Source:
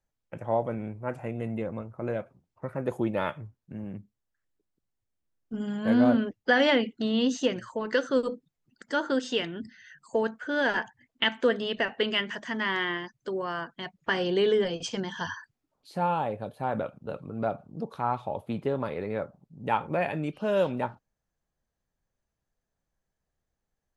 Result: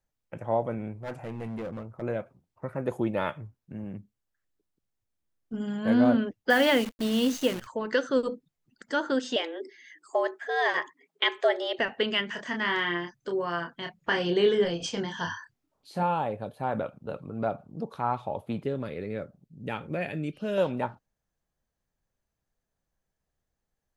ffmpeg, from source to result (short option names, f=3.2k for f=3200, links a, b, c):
-filter_complex "[0:a]asettb=1/sr,asplit=3[a][b][c];[a]atrim=end=1.024[d];[b]atrim=start=1.02:end=2.02,asetpts=PTS-STARTPTS,afade=t=in:d=0.004:c=qsin,afade=t=out:st=0.996:d=0.004:c=qsin,volume=31.5dB,asoftclip=hard,volume=-31.5dB[e];[c]atrim=start=2.016[f];[d][e]acrossfade=d=0.004:c1=hsin:c2=qsin[g];[g][f]acrossfade=d=0.004:c1=qsin:c2=hsin,asettb=1/sr,asplit=3[h][i][j];[h]atrim=end=6.504[k];[i]atrim=start=6.5:end=7.67,asetpts=PTS-STARTPTS,afade=t=in:d=0.004:c=qsin,afade=t=out:st=1.166:d=0.004:c=qsin,acrusher=bits=7:dc=4:mix=0:aa=0.000001[l];[j]atrim=start=7.666[m];[k][l]acrossfade=d=0.004:c1=hsin:c2=qsin[n];[n][m]acrossfade=d=0.004:c1=qsin:c2=hsin,asettb=1/sr,asplit=3[o][p][q];[o]atrim=end=9.364[r];[p]atrim=start=9.36:end=11.79,asetpts=PTS-STARTPTS,afade=t=in:d=0.004:c=qsin,afade=t=out:st=2.426:d=0.004:c=qsin,afreqshift=160[s];[q]atrim=start=11.786[t];[r][s]acrossfade=d=0.004:c1=hsin:c2=qsin[u];[u][t]acrossfade=d=0.004:c1=qsin:c2=hsin,asettb=1/sr,asplit=3[v][w][x];[v]atrim=end=12.324[y];[w]atrim=start=12.32:end=16.03,asetpts=PTS-STARTPTS,afade=t=in:d=0.004:c=qsin,afade=t=out:st=3.706:d=0.004:c=qsin,asplit=2[z][aa];[aa]adelay=29,volume=-5dB[ab];[z][ab]amix=inputs=2:normalize=0,atrim=end_sample=163611[ac];[x]atrim=start=16.026[ad];[y][ac]acrossfade=d=0.004:c1=hsin:c2=qsin[ae];[ae][ad]acrossfade=d=0.004:c1=qsin:c2=hsin,asettb=1/sr,asplit=3[af][ag][ah];[af]atrim=end=18.634[ai];[ag]atrim=start=18.63:end=20.58,asetpts=PTS-STARTPTS,afade=t=in:d=0.004:c=qsin,afade=t=out:st=1.946:d=0.004:c=qsin,equalizer=f=920:w=1.5:g=-14[aj];[ah]atrim=start=20.576[ak];[ai][aj]acrossfade=d=0.004:c1=hsin:c2=qsin[al];[al][ak]acrossfade=d=0.004:c1=qsin:c2=hsin"